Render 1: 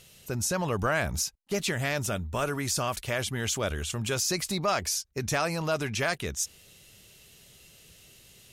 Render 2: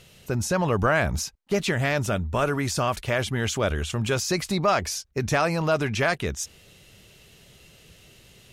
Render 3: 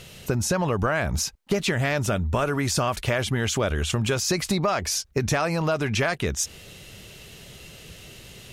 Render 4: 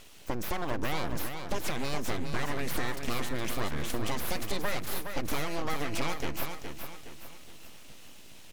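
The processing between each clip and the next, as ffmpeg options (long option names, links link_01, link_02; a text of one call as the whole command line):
ffmpeg -i in.wav -af "highshelf=frequency=4600:gain=-11,volume=6dB" out.wav
ffmpeg -i in.wav -af "acompressor=threshold=-29dB:ratio=5,volume=8dB" out.wav
ffmpeg -i in.wav -af "aeval=exprs='abs(val(0))':channel_layout=same,aecho=1:1:416|832|1248|1664|2080:0.447|0.188|0.0788|0.0331|0.0139,volume=-6.5dB" out.wav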